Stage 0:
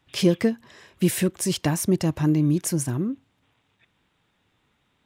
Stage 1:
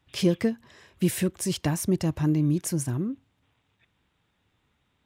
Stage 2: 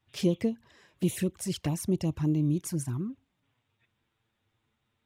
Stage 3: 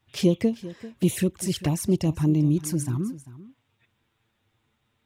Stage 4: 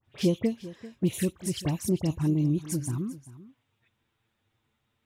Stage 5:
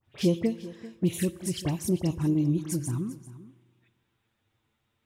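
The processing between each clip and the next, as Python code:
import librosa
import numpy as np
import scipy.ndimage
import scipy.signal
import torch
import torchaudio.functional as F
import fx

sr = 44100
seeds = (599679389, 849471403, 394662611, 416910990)

y1 = fx.peak_eq(x, sr, hz=63.0, db=7.0, octaves=1.6)
y1 = y1 * librosa.db_to_amplitude(-4.0)
y2 = fx.env_flanger(y1, sr, rest_ms=9.0, full_db=-21.0)
y2 = y2 * librosa.db_to_amplitude(-3.0)
y3 = y2 + 10.0 ** (-17.0 / 20.0) * np.pad(y2, (int(393 * sr / 1000.0), 0))[:len(y2)]
y3 = y3 * librosa.db_to_amplitude(5.5)
y4 = fx.dispersion(y3, sr, late='highs', ms=52.0, hz=2400.0)
y4 = y4 * librosa.db_to_amplitude(-4.0)
y5 = fx.rev_fdn(y4, sr, rt60_s=1.6, lf_ratio=1.05, hf_ratio=0.65, size_ms=18.0, drr_db=17.0)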